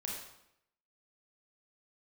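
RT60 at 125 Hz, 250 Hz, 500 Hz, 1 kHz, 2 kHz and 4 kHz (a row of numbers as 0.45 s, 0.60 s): 0.80 s, 0.85 s, 0.80 s, 0.75 s, 0.75 s, 0.65 s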